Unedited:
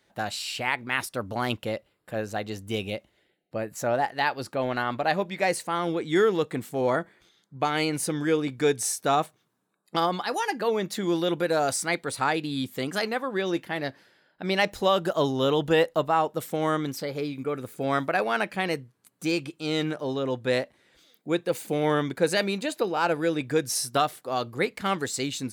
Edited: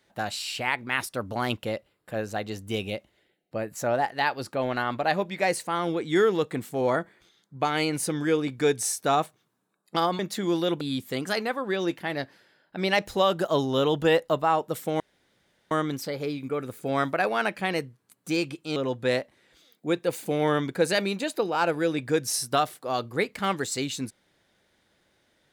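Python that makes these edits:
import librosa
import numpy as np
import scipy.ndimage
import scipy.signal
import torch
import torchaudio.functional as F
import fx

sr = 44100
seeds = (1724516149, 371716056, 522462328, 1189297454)

y = fx.edit(x, sr, fx.cut(start_s=10.19, length_s=0.6),
    fx.cut(start_s=11.41, length_s=1.06),
    fx.insert_room_tone(at_s=16.66, length_s=0.71),
    fx.cut(start_s=19.71, length_s=0.47), tone=tone)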